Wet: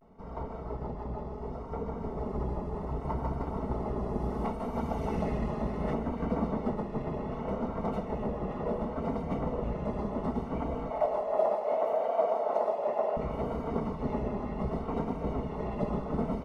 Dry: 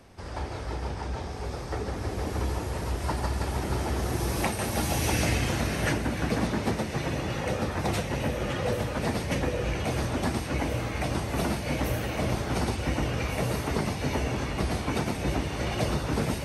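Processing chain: minimum comb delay 4.6 ms; polynomial smoothing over 65 samples; vibrato 0.68 Hz 76 cents; 10.9–13.17 resonant high-pass 610 Hz, resonance Q 4.4; feedback echo 0.157 s, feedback 55%, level -13 dB; gain -1.5 dB

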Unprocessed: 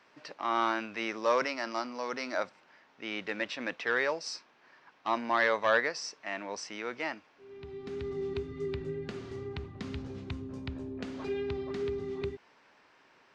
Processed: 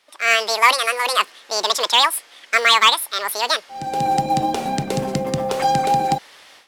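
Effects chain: AGC gain up to 16 dB; in parallel at -6 dB: short-mantissa float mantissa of 2-bit; on the sum: speed mistake 7.5 ips tape played at 15 ips; gain -2.5 dB

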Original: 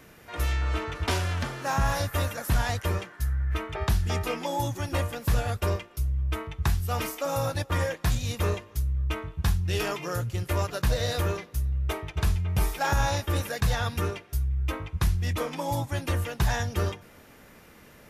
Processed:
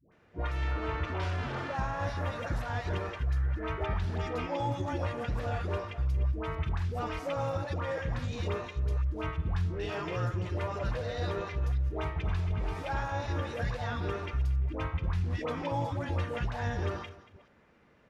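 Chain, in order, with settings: reverse delay 0.248 s, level -13.5 dB; HPF 43 Hz 6 dB/oct; gate -39 dBFS, range -14 dB; low shelf 450 Hz -4 dB; in parallel at +2 dB: compressor, threshold -36 dBFS, peak gain reduction 12.5 dB; on the sum: limiter -22 dBFS, peak gain reduction 10 dB; tape spacing loss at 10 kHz 26 dB; dispersion highs, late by 0.122 s, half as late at 670 Hz; on a send: echo 0.232 s -17.5 dB

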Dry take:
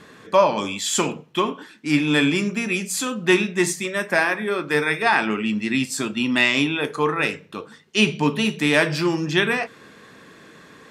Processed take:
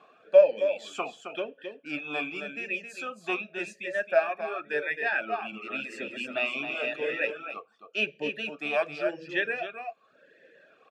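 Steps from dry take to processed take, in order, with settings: 5.24–7.32 regenerating reverse delay 0.283 s, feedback 49%, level -3.5 dB; reverb removal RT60 1.1 s; echo 0.267 s -8 dB; vowel sweep a-e 0.91 Hz; gain +3 dB

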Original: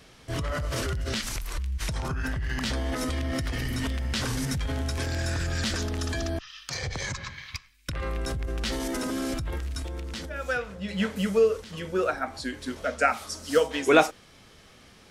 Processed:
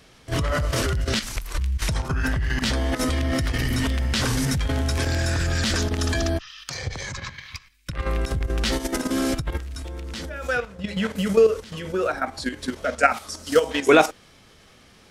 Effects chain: level quantiser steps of 10 dB; gain +7.5 dB

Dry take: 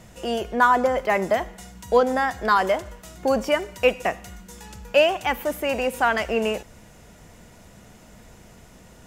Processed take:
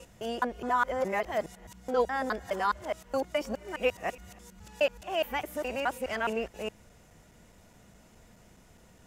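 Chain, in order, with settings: local time reversal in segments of 0.209 s; gain -9 dB

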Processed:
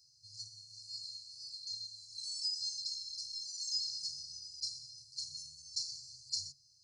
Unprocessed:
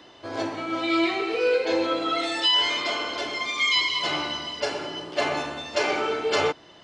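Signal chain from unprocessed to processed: low shelf 420 Hz -9 dB; FFT band-reject 140–4100 Hz; low shelf 130 Hz -9.5 dB; gain -2.5 dB

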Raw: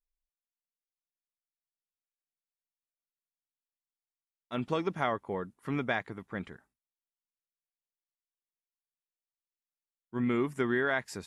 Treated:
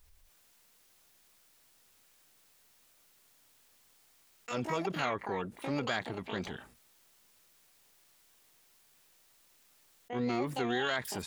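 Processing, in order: harmoniser +12 st -4 dB; fast leveller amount 50%; gain -5.5 dB

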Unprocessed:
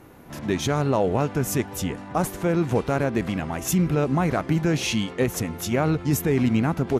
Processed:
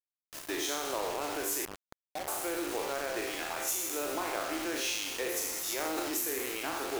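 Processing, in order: spectral trails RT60 1.06 s; elliptic high-pass 300 Hz, stop band 40 dB; tilt +2 dB/oct; on a send: flutter echo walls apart 6.5 m, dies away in 0.29 s; on the sum: compressor 3:1, threshold -23 dBFS, peak gain reduction 6.5 dB; 1.65–2.28 rippled Chebyshev low-pass 800 Hz, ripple 6 dB; 5.5–6.11 transient shaper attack -9 dB, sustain +10 dB; bit-crush 5-bit; gain -8.5 dB

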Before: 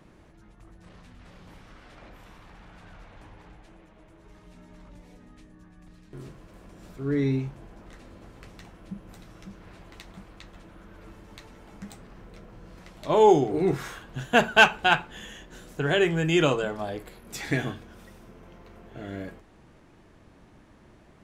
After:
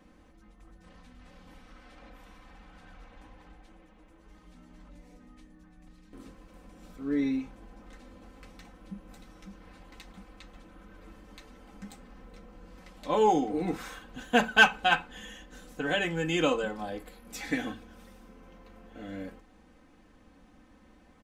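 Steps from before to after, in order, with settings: comb 3.9 ms, depth 91%; gain -6 dB

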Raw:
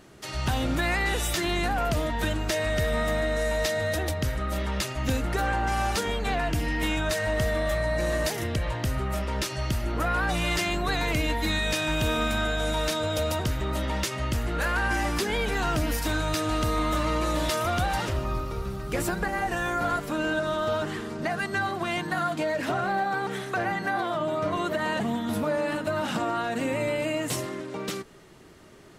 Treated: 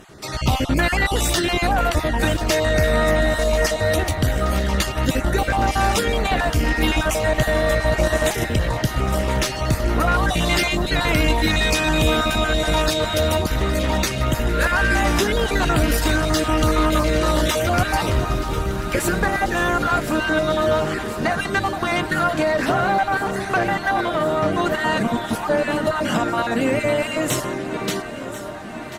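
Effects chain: random spectral dropouts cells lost 23%; added harmonics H 4 -24 dB, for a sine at -16 dBFS; on a send: echo with dull and thin repeats by turns 0.52 s, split 1200 Hz, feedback 89%, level -13.5 dB; on the sum: harmoniser -5 st -16 dB; gain +8 dB

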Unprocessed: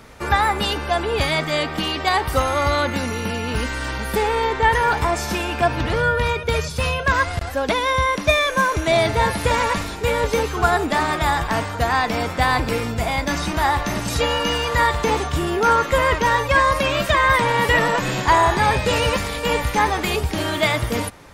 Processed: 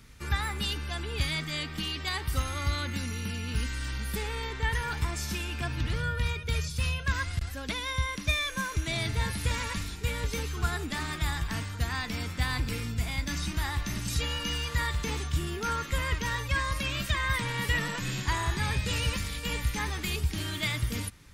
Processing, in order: passive tone stack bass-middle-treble 6-0-2; gain +8 dB

